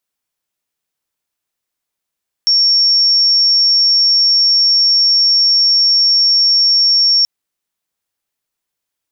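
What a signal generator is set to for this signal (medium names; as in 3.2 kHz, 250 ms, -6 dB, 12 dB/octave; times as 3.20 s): tone sine 5.49 kHz -8 dBFS 4.78 s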